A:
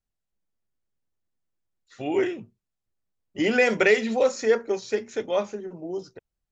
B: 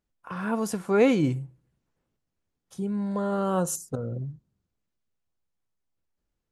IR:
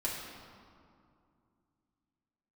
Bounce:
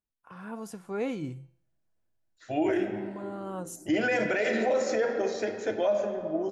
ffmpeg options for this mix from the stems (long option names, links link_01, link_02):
-filter_complex "[0:a]equalizer=frequency=100:width_type=o:width=0.33:gain=11,equalizer=frequency=315:width_type=o:width=0.33:gain=5,equalizer=frequency=630:width_type=o:width=0.33:gain=12,equalizer=frequency=1600:width_type=o:width=0.33:gain=7,adelay=500,volume=-6dB,asplit=2[link_01][link_02];[link_02]volume=-6.5dB[link_03];[1:a]bandreject=frequency=171.2:width_type=h:width=4,bandreject=frequency=342.4:width_type=h:width=4,bandreject=frequency=513.6:width_type=h:width=4,bandreject=frequency=684.8:width_type=h:width=4,bandreject=frequency=856:width_type=h:width=4,bandreject=frequency=1027.2:width_type=h:width=4,bandreject=frequency=1198.4:width_type=h:width=4,bandreject=frequency=1369.6:width_type=h:width=4,bandreject=frequency=1540.8:width_type=h:width=4,bandreject=frequency=1712:width_type=h:width=4,bandreject=frequency=1883.2:width_type=h:width=4,bandreject=frequency=2054.4:width_type=h:width=4,bandreject=frequency=2225.6:width_type=h:width=4,bandreject=frequency=2396.8:width_type=h:width=4,bandreject=frequency=2568:width_type=h:width=4,bandreject=frequency=2739.2:width_type=h:width=4,bandreject=frequency=2910.4:width_type=h:width=4,bandreject=frequency=3081.6:width_type=h:width=4,bandreject=frequency=3252.8:width_type=h:width=4,bandreject=frequency=3424:width_type=h:width=4,bandreject=frequency=3595.2:width_type=h:width=4,bandreject=frequency=3766.4:width_type=h:width=4,bandreject=frequency=3937.6:width_type=h:width=4,bandreject=frequency=4108.8:width_type=h:width=4,bandreject=frequency=4280:width_type=h:width=4,bandreject=frequency=4451.2:width_type=h:width=4,bandreject=frequency=4622.4:width_type=h:width=4,bandreject=frequency=4793.6:width_type=h:width=4,bandreject=frequency=4964.8:width_type=h:width=4,bandreject=frequency=5136:width_type=h:width=4,bandreject=frequency=5307.2:width_type=h:width=4,bandreject=frequency=5478.4:width_type=h:width=4,bandreject=frequency=5649.6:width_type=h:width=4,bandreject=frequency=5820.8:width_type=h:width=4,bandreject=frequency=5992:width_type=h:width=4,bandreject=frequency=6163.2:width_type=h:width=4,bandreject=frequency=6334.4:width_type=h:width=4,bandreject=frequency=6505.6:width_type=h:width=4,bandreject=frequency=6676.8:width_type=h:width=4,bandreject=frequency=6848:width_type=h:width=4,volume=-11.5dB[link_04];[2:a]atrim=start_sample=2205[link_05];[link_03][link_05]afir=irnorm=-1:irlink=0[link_06];[link_01][link_04][link_06]amix=inputs=3:normalize=0,equalizer=frequency=800:width=5.2:gain=2,alimiter=limit=-18dB:level=0:latency=1:release=58"